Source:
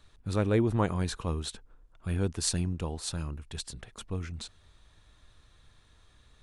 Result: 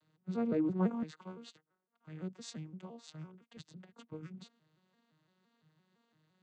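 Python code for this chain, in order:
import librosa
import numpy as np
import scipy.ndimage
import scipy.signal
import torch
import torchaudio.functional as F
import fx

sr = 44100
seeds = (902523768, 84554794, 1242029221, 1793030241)

y = fx.vocoder_arp(x, sr, chord='minor triad', root=51, every_ms=170)
y = fx.low_shelf(y, sr, hz=480.0, db=-10.5, at=(1.03, 3.57))
y = F.gain(torch.from_numpy(y), -4.0).numpy()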